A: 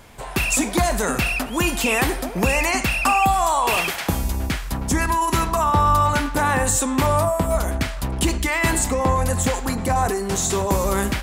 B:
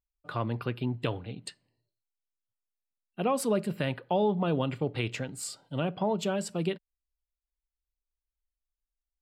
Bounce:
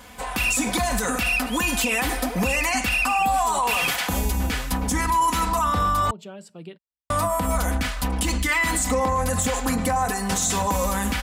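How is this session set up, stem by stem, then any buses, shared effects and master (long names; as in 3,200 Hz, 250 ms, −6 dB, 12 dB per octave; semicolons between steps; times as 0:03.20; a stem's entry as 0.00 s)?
+1.5 dB, 0.00 s, muted 0:06.11–0:07.10, no send, parametric band 360 Hz −4.5 dB 1.8 octaves; comb filter 4 ms, depth 89%; downward compressor, threshold −16 dBFS, peak gain reduction 5.5 dB
−9.5 dB, 0.00 s, no send, no processing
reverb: not used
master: high-pass filter 58 Hz 12 dB per octave; brickwall limiter −13.5 dBFS, peak gain reduction 7.5 dB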